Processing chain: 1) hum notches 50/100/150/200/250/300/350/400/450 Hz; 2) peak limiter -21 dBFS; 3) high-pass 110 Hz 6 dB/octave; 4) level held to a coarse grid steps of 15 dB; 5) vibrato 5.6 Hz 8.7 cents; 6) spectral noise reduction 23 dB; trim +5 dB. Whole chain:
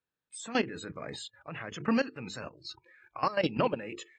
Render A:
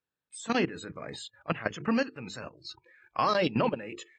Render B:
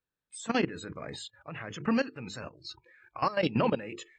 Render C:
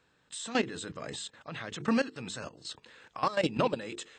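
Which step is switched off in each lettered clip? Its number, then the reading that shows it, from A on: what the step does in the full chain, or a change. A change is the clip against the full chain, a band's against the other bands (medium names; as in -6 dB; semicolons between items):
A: 2, crest factor change +2.5 dB; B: 3, 125 Hz band +3.0 dB; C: 6, 8 kHz band +4.5 dB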